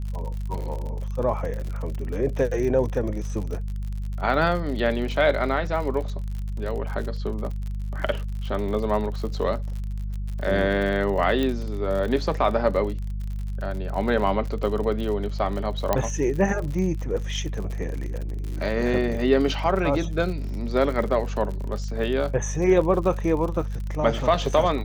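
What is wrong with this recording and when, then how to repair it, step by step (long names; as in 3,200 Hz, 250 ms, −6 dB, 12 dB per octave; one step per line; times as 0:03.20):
surface crackle 60 per second −31 dBFS
mains hum 50 Hz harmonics 4 −29 dBFS
0:11.43: click −14 dBFS
0:15.93: click −7 dBFS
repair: click removal
hum removal 50 Hz, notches 4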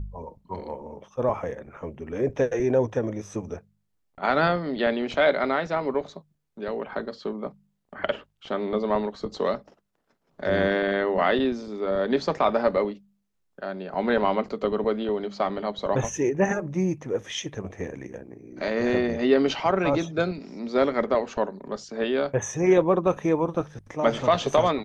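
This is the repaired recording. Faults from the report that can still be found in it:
none of them is left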